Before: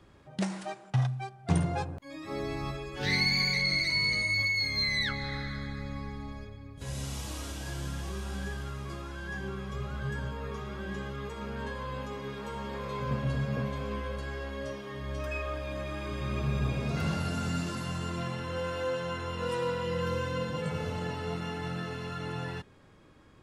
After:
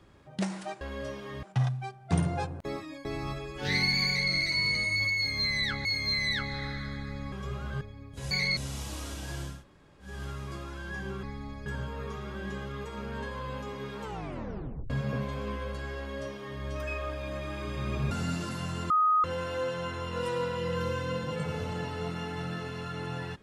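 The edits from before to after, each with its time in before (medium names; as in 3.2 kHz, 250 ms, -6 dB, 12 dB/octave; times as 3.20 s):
2.03–2.43 s: reverse
3.45–3.71 s: copy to 6.95 s
4.55–5.23 s: loop, 2 plays
6.02–6.45 s: swap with 9.61–10.10 s
7.91–8.49 s: room tone, crossfade 0.24 s
12.46 s: tape stop 0.88 s
14.42–15.04 s: copy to 0.81 s
16.55–17.37 s: delete
18.16–18.50 s: bleep 1.25 kHz -20.5 dBFS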